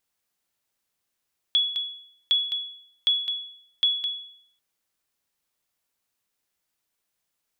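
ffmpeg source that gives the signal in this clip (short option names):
-f lavfi -i "aevalsrc='0.188*(sin(2*PI*3380*mod(t,0.76))*exp(-6.91*mod(t,0.76)/0.65)+0.398*sin(2*PI*3380*max(mod(t,0.76)-0.21,0))*exp(-6.91*max(mod(t,0.76)-0.21,0)/0.65))':d=3.04:s=44100"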